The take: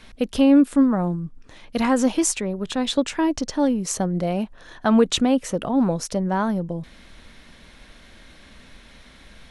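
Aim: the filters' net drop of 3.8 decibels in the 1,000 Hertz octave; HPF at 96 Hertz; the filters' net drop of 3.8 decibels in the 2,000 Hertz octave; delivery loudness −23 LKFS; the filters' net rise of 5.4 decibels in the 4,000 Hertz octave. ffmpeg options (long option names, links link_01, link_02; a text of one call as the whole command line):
ffmpeg -i in.wav -af "highpass=96,equalizer=frequency=1000:width_type=o:gain=-4,equalizer=frequency=2000:width_type=o:gain=-6.5,equalizer=frequency=4000:width_type=o:gain=8.5,volume=-1.5dB" out.wav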